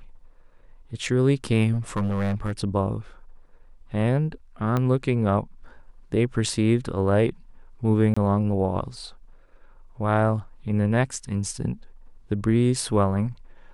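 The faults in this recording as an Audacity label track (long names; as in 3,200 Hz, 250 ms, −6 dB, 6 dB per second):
1.720000	2.520000	clipping −20 dBFS
4.770000	4.770000	click −13 dBFS
8.140000	8.160000	drop-out 25 ms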